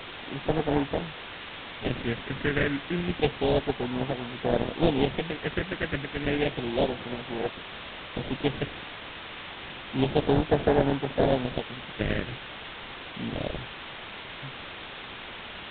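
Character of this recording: aliases and images of a low sample rate 1.2 kHz, jitter 20%; phasing stages 4, 0.3 Hz, lowest notch 780–2900 Hz; a quantiser's noise floor 6-bit, dither triangular; A-law

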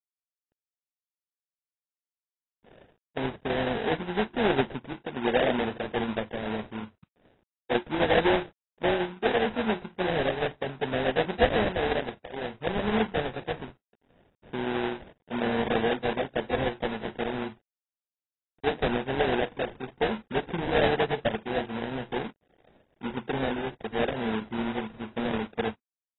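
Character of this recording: aliases and images of a low sample rate 1.2 kHz, jitter 20%; tremolo saw down 12 Hz, depth 35%; a quantiser's noise floor 12-bit, dither none; AAC

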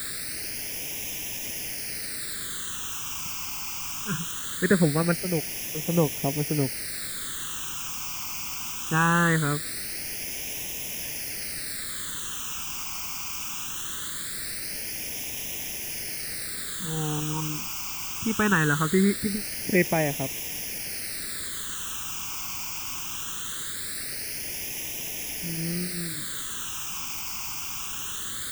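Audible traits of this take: a quantiser's noise floor 6-bit, dither triangular; phasing stages 8, 0.21 Hz, lowest notch 530–1300 Hz

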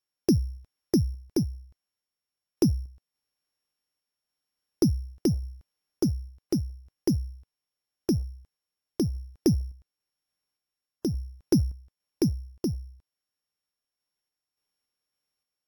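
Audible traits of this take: a buzz of ramps at a fixed pitch in blocks of 8 samples; random-step tremolo; AAC

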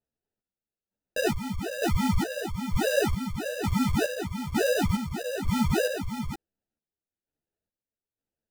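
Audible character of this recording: aliases and images of a low sample rate 1.1 kHz, jitter 0%; chopped level 1.1 Hz, depth 60%, duty 45%; a shimmering, thickened sound

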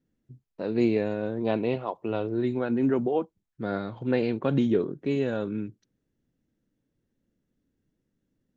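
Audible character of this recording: noise floor -80 dBFS; spectral tilt -6.0 dB/octave

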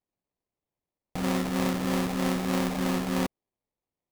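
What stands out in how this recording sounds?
phasing stages 12, 3.2 Hz, lowest notch 430–4400 Hz; aliases and images of a low sample rate 1.5 kHz, jitter 20%

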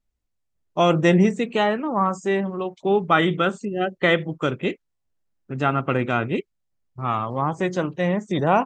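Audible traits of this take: noise floor -76 dBFS; spectral tilt -5.0 dB/octave

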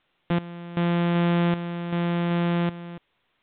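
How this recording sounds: a buzz of ramps at a fixed pitch in blocks of 256 samples; random-step tremolo 2.6 Hz, depth 85%; a quantiser's noise floor 12-bit, dither triangular; µ-law

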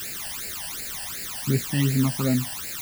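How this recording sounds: a quantiser's noise floor 6-bit, dither triangular; phasing stages 12, 2.7 Hz, lowest notch 380–1100 Hz

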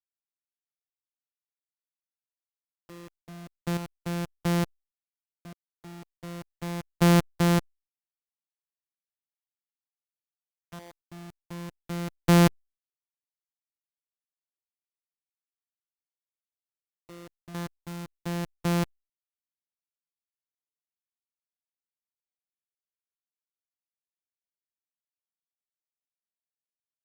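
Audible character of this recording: a buzz of ramps at a fixed pitch in blocks of 256 samples; chopped level 0.57 Hz, depth 65%, duty 15%; a quantiser's noise floor 8-bit, dither none; Opus

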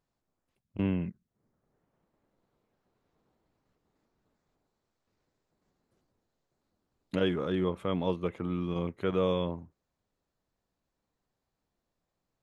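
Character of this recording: noise floor -85 dBFS; spectral tilt -6.5 dB/octave

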